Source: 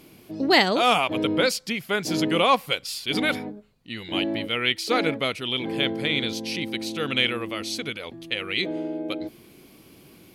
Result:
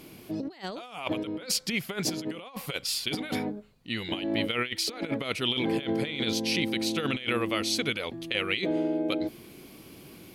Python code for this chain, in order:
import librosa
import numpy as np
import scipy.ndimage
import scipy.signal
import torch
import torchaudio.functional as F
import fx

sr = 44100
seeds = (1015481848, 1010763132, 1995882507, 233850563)

y = fx.over_compress(x, sr, threshold_db=-28.0, ratio=-0.5)
y = y * 10.0 ** (-1.5 / 20.0)